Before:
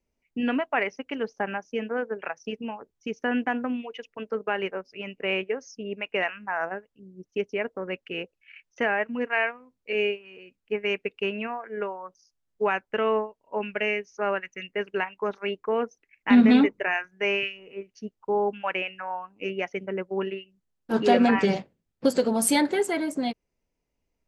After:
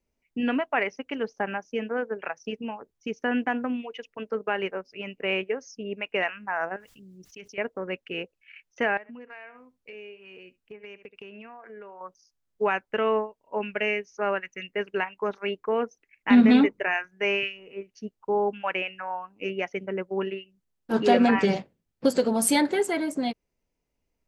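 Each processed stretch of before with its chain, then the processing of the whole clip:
6.76–7.58 passive tone stack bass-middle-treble 5-5-5 + fast leveller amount 70%
8.97–12.01 echo 71 ms -22.5 dB + compressor, threshold -41 dBFS
whole clip: dry

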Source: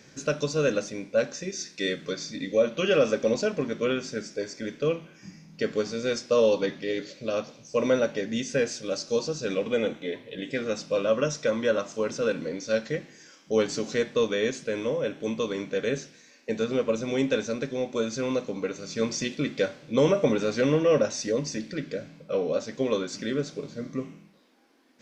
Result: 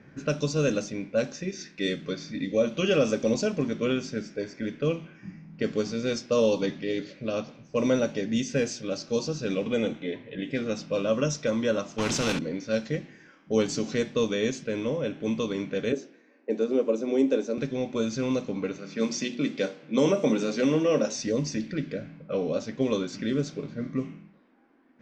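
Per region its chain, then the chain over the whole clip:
11.98–12.39 high shelf 3700 Hz -7 dB + sample leveller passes 1 + spectral compressor 2:1
15.92–17.58 HPF 310 Hz 24 dB/oct + tilt shelf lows +9 dB, about 730 Hz
18.78–21.15 HPF 180 Hz 24 dB/oct + notches 60/120/180/240/300/360/420/480/540 Hz
whole clip: graphic EQ 500/1000/4000 Hz -6/-3/-4 dB; low-pass opened by the level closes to 1500 Hz, open at -23.5 dBFS; dynamic EQ 1700 Hz, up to -7 dB, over -48 dBFS, Q 1.3; gain +4.5 dB

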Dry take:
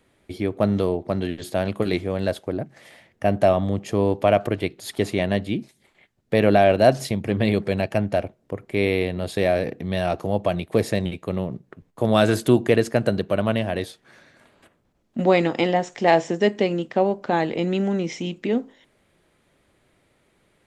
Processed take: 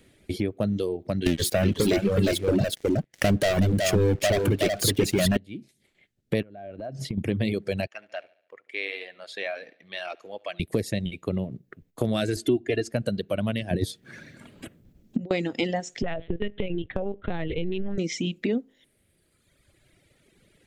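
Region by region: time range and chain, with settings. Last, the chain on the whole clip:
1.26–5.37 sample leveller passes 5 + echo 0.369 s -3 dB
6.42–7.18 LPF 1200 Hz 6 dB/oct + compressor 10:1, threshold -30 dBFS
7.87–10.6 HPF 1200 Hz + tape spacing loss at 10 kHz 23 dB + feedback echo 71 ms, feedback 51%, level -15 dB
12.36–12.92 LPF 9700 Hz + high shelf 5300 Hz -6 dB + comb 2.9 ms, depth 96%
13.71–15.31 bell 150 Hz +10.5 dB 2.8 oct + negative-ratio compressor -22 dBFS, ratio -0.5
16.02–17.98 LPC vocoder at 8 kHz pitch kept + compressor, threshold -19 dBFS
whole clip: reverb removal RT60 1.8 s; bell 980 Hz -12.5 dB 1.2 oct; compressor 3:1, threshold -33 dBFS; gain +7.5 dB

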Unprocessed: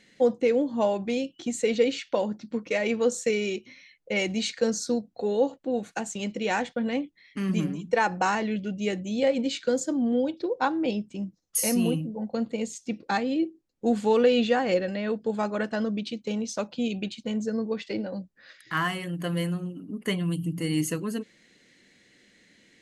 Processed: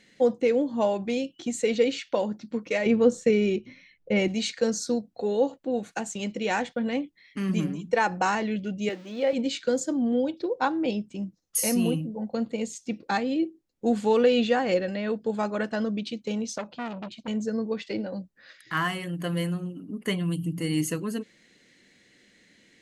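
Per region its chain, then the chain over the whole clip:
2.86–4.28 LPF 2900 Hz 6 dB/oct + low shelf 290 Hz +12 dB
8.89–9.33 switching spikes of -27.5 dBFS + HPF 330 Hz + air absorption 200 m
16.58–17.28 LPF 2600 Hz 6 dB/oct + core saturation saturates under 1300 Hz
whole clip: dry

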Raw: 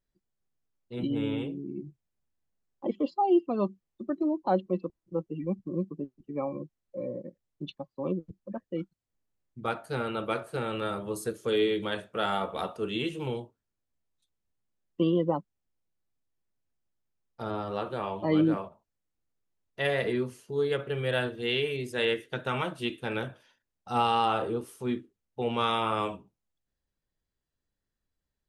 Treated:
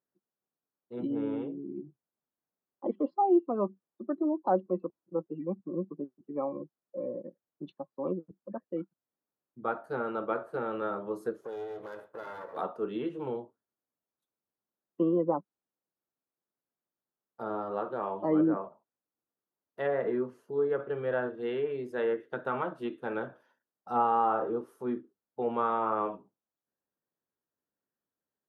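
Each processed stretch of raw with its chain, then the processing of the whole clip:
11.41–12.57 minimum comb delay 2 ms + compressor 2.5:1, threshold -40 dBFS
whole clip: treble ducked by the level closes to 2000 Hz, closed at -23.5 dBFS; HPF 240 Hz 12 dB/oct; band shelf 4500 Hz -16 dB 2.5 oct

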